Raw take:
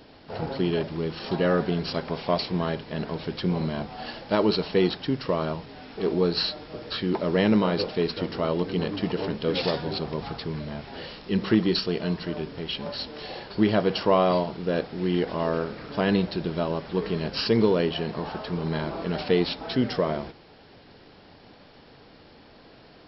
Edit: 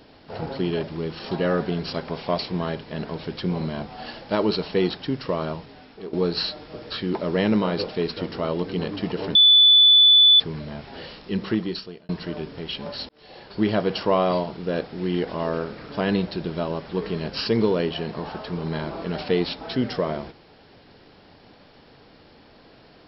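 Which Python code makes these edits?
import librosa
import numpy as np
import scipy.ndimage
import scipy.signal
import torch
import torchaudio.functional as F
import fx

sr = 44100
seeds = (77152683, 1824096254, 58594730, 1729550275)

y = fx.edit(x, sr, fx.fade_out_to(start_s=5.56, length_s=0.57, floor_db=-13.0),
    fx.bleep(start_s=9.35, length_s=1.05, hz=3480.0, db=-10.0),
    fx.fade_out_span(start_s=11.0, length_s=1.09, curve='qsin'),
    fx.fade_in_span(start_s=13.09, length_s=0.58), tone=tone)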